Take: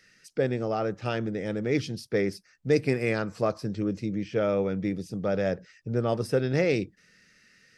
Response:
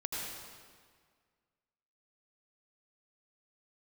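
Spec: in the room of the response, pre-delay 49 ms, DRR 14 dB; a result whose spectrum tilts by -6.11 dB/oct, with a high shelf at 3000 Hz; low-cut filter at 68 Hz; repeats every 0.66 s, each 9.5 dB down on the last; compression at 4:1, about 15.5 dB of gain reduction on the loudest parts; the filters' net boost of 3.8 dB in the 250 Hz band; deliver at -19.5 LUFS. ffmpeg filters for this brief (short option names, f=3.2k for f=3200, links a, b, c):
-filter_complex "[0:a]highpass=68,equalizer=f=250:t=o:g=5,highshelf=f=3k:g=5,acompressor=threshold=-36dB:ratio=4,aecho=1:1:660|1320|1980|2640:0.335|0.111|0.0365|0.012,asplit=2[a][b];[1:a]atrim=start_sample=2205,adelay=49[c];[b][c]afir=irnorm=-1:irlink=0,volume=-17.5dB[d];[a][d]amix=inputs=2:normalize=0,volume=19dB"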